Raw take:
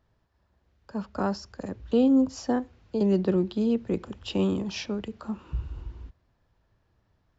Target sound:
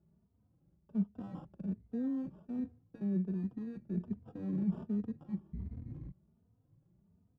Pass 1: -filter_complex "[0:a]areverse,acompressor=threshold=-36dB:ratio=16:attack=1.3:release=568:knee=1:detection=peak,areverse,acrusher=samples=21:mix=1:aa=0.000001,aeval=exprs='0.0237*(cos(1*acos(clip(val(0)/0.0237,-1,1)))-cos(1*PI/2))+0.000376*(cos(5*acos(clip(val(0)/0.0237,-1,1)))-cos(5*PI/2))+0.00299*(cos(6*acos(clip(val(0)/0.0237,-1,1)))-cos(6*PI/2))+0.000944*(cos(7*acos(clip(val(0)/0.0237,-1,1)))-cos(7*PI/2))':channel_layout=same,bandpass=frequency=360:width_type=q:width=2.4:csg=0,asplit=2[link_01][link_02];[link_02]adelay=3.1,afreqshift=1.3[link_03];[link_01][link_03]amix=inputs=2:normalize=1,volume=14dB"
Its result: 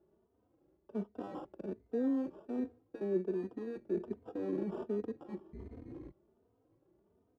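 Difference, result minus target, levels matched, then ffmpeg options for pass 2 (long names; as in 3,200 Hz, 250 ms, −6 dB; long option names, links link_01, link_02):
500 Hz band +12.0 dB
-filter_complex "[0:a]areverse,acompressor=threshold=-36dB:ratio=16:attack=1.3:release=568:knee=1:detection=peak,areverse,acrusher=samples=21:mix=1:aa=0.000001,aeval=exprs='0.0237*(cos(1*acos(clip(val(0)/0.0237,-1,1)))-cos(1*PI/2))+0.000376*(cos(5*acos(clip(val(0)/0.0237,-1,1)))-cos(5*PI/2))+0.00299*(cos(6*acos(clip(val(0)/0.0237,-1,1)))-cos(6*PI/2))+0.000944*(cos(7*acos(clip(val(0)/0.0237,-1,1)))-cos(7*PI/2))':channel_layout=same,bandpass=frequency=170:width_type=q:width=2.4:csg=0,asplit=2[link_01][link_02];[link_02]adelay=3.1,afreqshift=1.3[link_03];[link_01][link_03]amix=inputs=2:normalize=1,volume=14dB"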